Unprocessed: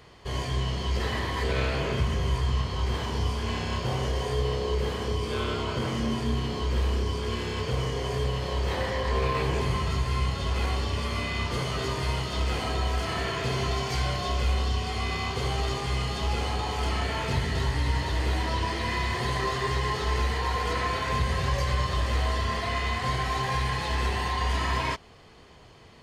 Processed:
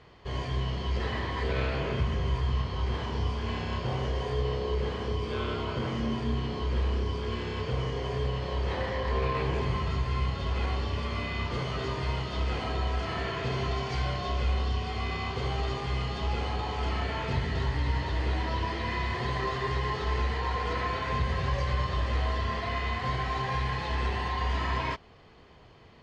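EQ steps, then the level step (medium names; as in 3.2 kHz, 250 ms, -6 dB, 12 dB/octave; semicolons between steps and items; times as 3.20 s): distance through air 130 m; -2.0 dB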